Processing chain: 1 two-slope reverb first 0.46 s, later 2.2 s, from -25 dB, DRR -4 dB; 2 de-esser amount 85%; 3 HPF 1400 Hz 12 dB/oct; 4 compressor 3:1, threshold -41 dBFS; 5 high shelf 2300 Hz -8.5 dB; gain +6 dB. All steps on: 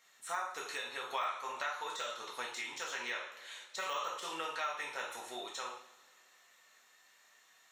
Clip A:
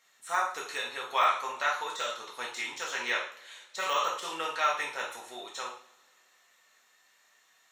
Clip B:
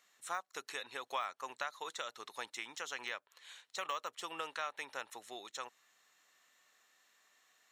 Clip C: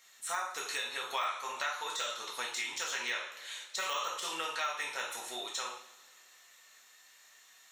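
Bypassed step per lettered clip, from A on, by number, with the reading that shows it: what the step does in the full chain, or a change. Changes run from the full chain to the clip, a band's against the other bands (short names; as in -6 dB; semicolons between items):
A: 4, mean gain reduction 4.5 dB; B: 1, loudness change -3.0 LU; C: 5, 8 kHz band +6.0 dB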